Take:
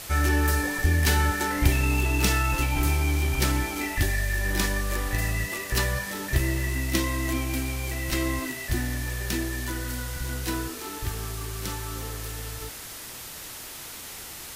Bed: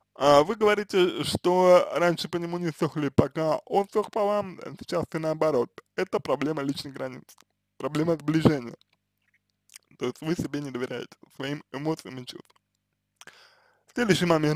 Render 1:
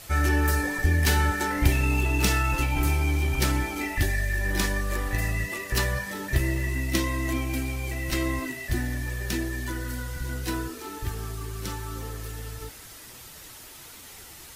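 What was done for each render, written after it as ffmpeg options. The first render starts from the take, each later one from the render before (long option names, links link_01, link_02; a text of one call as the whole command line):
ffmpeg -i in.wav -af "afftdn=noise_reduction=7:noise_floor=-40" out.wav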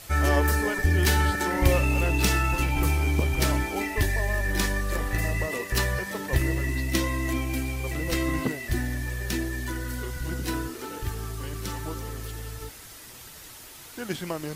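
ffmpeg -i in.wav -i bed.wav -filter_complex "[1:a]volume=-10.5dB[link_01];[0:a][link_01]amix=inputs=2:normalize=0" out.wav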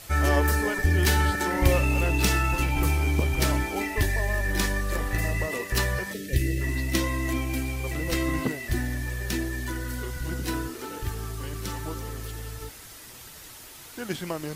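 ffmpeg -i in.wav -filter_complex "[0:a]asplit=3[link_01][link_02][link_03];[link_01]afade=type=out:start_time=6.12:duration=0.02[link_04];[link_02]asuperstop=centerf=980:order=4:qfactor=0.59,afade=type=in:start_time=6.12:duration=0.02,afade=type=out:start_time=6.6:duration=0.02[link_05];[link_03]afade=type=in:start_time=6.6:duration=0.02[link_06];[link_04][link_05][link_06]amix=inputs=3:normalize=0" out.wav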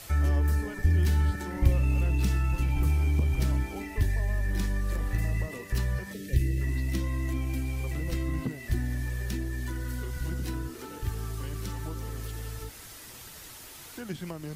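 ffmpeg -i in.wav -filter_complex "[0:a]acrossover=split=230[link_01][link_02];[link_02]acompressor=threshold=-42dB:ratio=3[link_03];[link_01][link_03]amix=inputs=2:normalize=0" out.wav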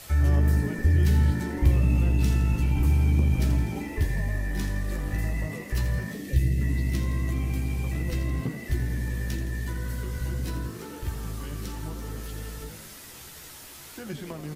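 ffmpeg -i in.wav -filter_complex "[0:a]asplit=2[link_01][link_02];[link_02]adelay=14,volume=-7dB[link_03];[link_01][link_03]amix=inputs=2:normalize=0,asplit=8[link_04][link_05][link_06][link_07][link_08][link_09][link_10][link_11];[link_05]adelay=83,afreqshift=51,volume=-10.5dB[link_12];[link_06]adelay=166,afreqshift=102,volume=-14.8dB[link_13];[link_07]adelay=249,afreqshift=153,volume=-19.1dB[link_14];[link_08]adelay=332,afreqshift=204,volume=-23.4dB[link_15];[link_09]adelay=415,afreqshift=255,volume=-27.7dB[link_16];[link_10]adelay=498,afreqshift=306,volume=-32dB[link_17];[link_11]adelay=581,afreqshift=357,volume=-36.3dB[link_18];[link_04][link_12][link_13][link_14][link_15][link_16][link_17][link_18]amix=inputs=8:normalize=0" out.wav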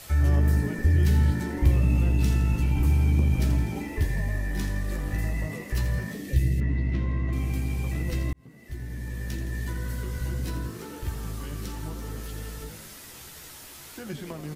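ffmpeg -i in.wav -filter_complex "[0:a]asettb=1/sr,asplit=3[link_01][link_02][link_03];[link_01]atrim=end=6.604[link_04];[link_02]atrim=start=6.6:end=7.33,asetpts=PTS-STARTPTS,afade=type=in:duration=0.004:curve=qsin,afade=type=out:start_time=0.726:duration=0.004:curve=qsin,lowpass=2400[link_05];[link_03]atrim=start=7.326[link_06];[link_04][link_05]acrossfade=duration=0.004:curve1=hsin:curve2=qsin[link_07];[link_07][link_06]acrossfade=duration=0.004:curve1=qsin:curve2=hsin,asplit=2[link_08][link_09];[link_08]atrim=end=8.33,asetpts=PTS-STARTPTS,afade=type=out:start_time=8.326:duration=0.004:curve=hsin[link_10];[link_09]atrim=start=8.33,asetpts=PTS-STARTPTS,afade=type=in:duration=1.28[link_11];[link_10][link_11]concat=n=2:v=0:a=1" out.wav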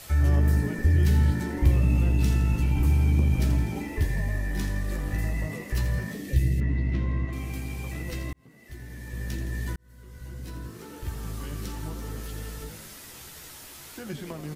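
ffmpeg -i in.wav -filter_complex "[0:a]asettb=1/sr,asplit=3[link_01][link_02][link_03];[link_01]atrim=end=7.254[link_04];[link_02]atrim=start=7.25:end=9.13,asetpts=PTS-STARTPTS,afade=type=in:duration=0.004:curve=qsin,afade=type=out:start_time=1.876:duration=0.004:curve=qsin,lowshelf=frequency=320:gain=-6.5[link_05];[link_03]atrim=start=9.126[link_06];[link_04][link_05]acrossfade=duration=0.004:curve1=hsin:curve2=qsin[link_07];[link_07][link_06]acrossfade=duration=0.004:curve1=qsin:curve2=hsin,asplit=2[link_08][link_09];[link_08]atrim=end=9.76,asetpts=PTS-STARTPTS,afade=type=out:start_time=9.756:duration=0.004:curve=hsin[link_10];[link_09]atrim=start=9.76,asetpts=PTS-STARTPTS,afade=type=in:duration=1.67[link_11];[link_10][link_11]concat=n=2:v=0:a=1" out.wav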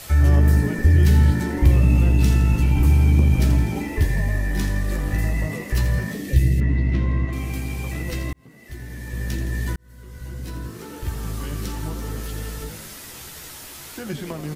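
ffmpeg -i in.wav -af "volume=6dB,alimiter=limit=-3dB:level=0:latency=1" out.wav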